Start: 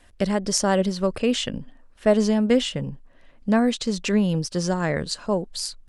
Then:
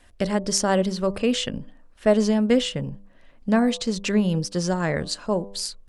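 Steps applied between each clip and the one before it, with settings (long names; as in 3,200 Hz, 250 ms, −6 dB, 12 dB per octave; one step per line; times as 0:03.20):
hum removal 99.35 Hz, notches 12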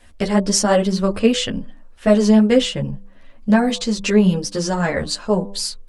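string-ensemble chorus
level +8 dB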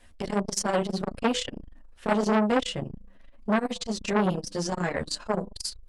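saturating transformer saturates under 1,100 Hz
level −5.5 dB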